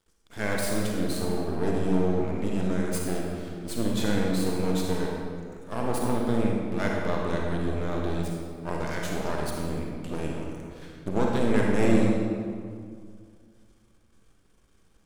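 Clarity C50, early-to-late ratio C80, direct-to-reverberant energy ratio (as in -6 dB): -0.5 dB, 1.5 dB, -2.0 dB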